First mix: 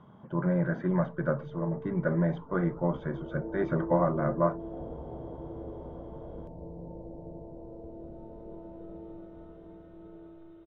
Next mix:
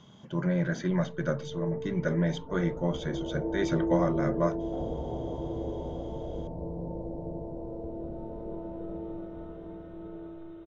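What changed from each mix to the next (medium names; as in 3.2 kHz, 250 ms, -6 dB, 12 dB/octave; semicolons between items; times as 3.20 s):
speech: remove resonant low-pass 1.2 kHz, resonance Q 1.5; background +6.5 dB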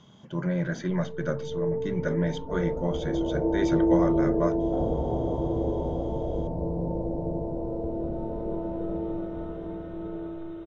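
background +7.0 dB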